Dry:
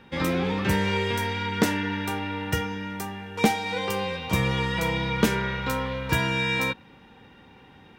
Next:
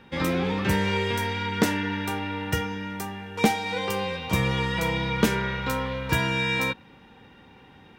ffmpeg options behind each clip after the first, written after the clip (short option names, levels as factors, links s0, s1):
-af anull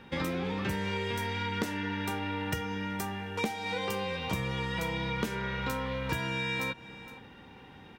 -af "aecho=1:1:465:0.0668,acompressor=threshold=0.0316:ratio=5"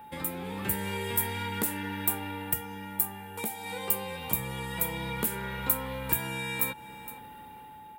-af "aexciter=amount=14.5:drive=4.5:freq=8400,dynaudnorm=f=120:g=9:m=2,aeval=exprs='val(0)+0.0112*sin(2*PI*860*n/s)':c=same,volume=0.473"